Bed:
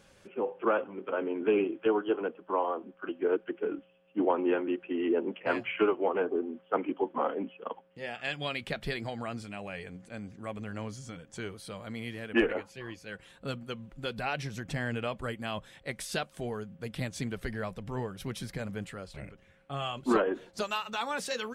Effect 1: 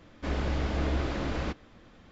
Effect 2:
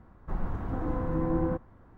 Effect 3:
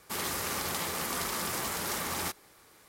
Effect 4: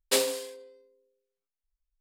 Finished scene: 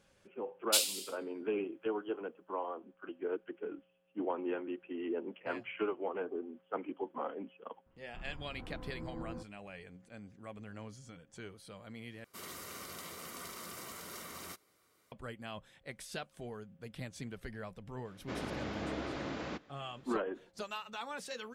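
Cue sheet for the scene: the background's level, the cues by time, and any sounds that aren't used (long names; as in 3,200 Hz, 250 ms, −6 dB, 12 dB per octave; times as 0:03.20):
bed −9 dB
0:00.61: mix in 4 −1 dB + Butterworth high-pass 2,500 Hz
0:07.86: mix in 2 −16.5 dB
0:12.24: overwrite with 3 −12 dB + notch comb filter 850 Hz
0:18.05: mix in 1 −6 dB + high-pass filter 160 Hz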